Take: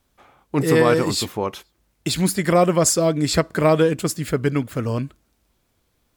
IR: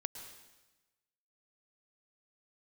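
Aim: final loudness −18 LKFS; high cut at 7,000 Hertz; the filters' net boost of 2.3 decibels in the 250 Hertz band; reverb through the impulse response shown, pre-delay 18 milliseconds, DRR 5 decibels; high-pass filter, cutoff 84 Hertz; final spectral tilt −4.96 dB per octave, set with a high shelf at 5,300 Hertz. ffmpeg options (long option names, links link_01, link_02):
-filter_complex "[0:a]highpass=84,lowpass=7000,equalizer=frequency=250:width_type=o:gain=3.5,highshelf=frequency=5300:gain=5,asplit=2[link_01][link_02];[1:a]atrim=start_sample=2205,adelay=18[link_03];[link_02][link_03]afir=irnorm=-1:irlink=0,volume=-4dB[link_04];[link_01][link_04]amix=inputs=2:normalize=0"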